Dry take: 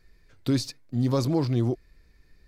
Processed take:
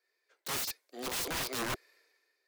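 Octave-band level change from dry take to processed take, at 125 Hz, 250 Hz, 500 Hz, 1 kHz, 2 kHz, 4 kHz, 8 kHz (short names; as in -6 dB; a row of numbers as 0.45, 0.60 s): -24.0, -19.0, -12.0, -1.5, +8.0, +0.5, +5.0 dB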